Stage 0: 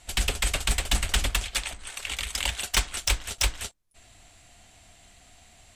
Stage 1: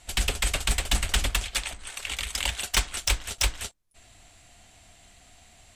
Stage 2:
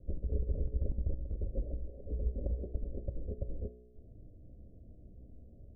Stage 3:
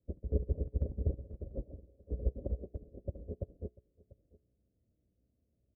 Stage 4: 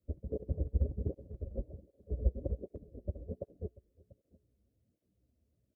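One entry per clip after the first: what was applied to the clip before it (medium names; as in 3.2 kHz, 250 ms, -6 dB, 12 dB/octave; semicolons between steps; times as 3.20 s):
no audible change
steep low-pass 560 Hz 72 dB/octave; compressor with a negative ratio -33 dBFS, ratio -0.5; feedback comb 61 Hz, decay 1.2 s, harmonics all, mix 70%; trim +9 dB
high-pass 73 Hz 12 dB/octave; delay 692 ms -8.5 dB; upward expansion 2.5:1, over -52 dBFS; trim +8 dB
cancelling through-zero flanger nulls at 1.3 Hz, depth 7.7 ms; trim +3.5 dB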